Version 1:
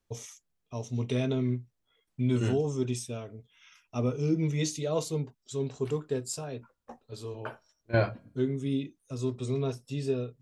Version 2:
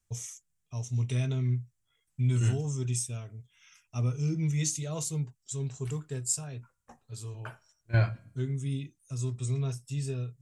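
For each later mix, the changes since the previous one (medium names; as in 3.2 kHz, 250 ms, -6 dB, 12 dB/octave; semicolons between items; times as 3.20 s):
second voice: send +7.0 dB; master: add graphic EQ 125/250/500/1000/4000/8000 Hz +6/-8/-10/-4/-6/+10 dB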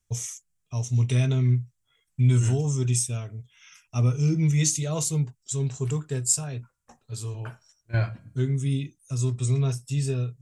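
first voice +7.0 dB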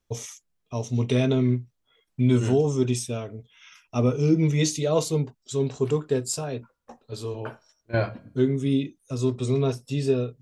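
master: add graphic EQ 125/250/500/1000/4000/8000 Hz -6/+8/+10/+4/+6/-10 dB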